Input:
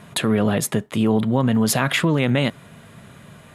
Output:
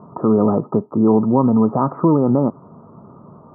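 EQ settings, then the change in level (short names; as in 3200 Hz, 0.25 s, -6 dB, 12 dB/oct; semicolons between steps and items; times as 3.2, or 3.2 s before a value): rippled Chebyshev low-pass 1300 Hz, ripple 6 dB; low shelf 95 Hz -11.5 dB; +8.5 dB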